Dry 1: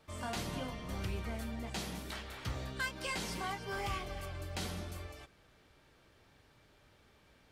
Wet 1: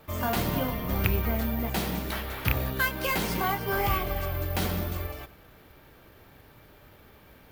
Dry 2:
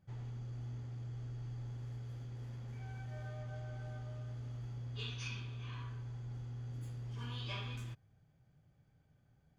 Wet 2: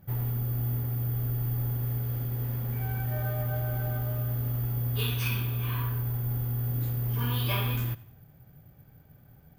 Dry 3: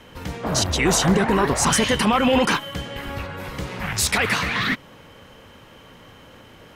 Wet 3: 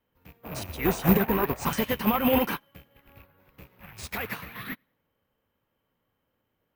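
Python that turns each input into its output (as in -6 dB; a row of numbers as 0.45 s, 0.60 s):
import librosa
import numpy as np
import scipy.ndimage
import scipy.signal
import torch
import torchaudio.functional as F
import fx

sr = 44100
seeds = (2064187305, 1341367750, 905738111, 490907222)

y = fx.rattle_buzz(x, sr, strikes_db=-31.0, level_db=-19.0)
y = fx.echo_feedback(y, sr, ms=94, feedback_pct=44, wet_db=-19.5)
y = (np.kron(y[::3], np.eye(3)[0]) * 3)[:len(y)]
y = fx.lowpass(y, sr, hz=2300.0, slope=6)
y = fx.upward_expand(y, sr, threshold_db=-34.0, expansion=2.5)
y = y * 10.0 ** (-30 / 20.0) / np.sqrt(np.mean(np.square(y)))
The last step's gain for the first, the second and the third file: +12.5 dB, +14.5 dB, -0.5 dB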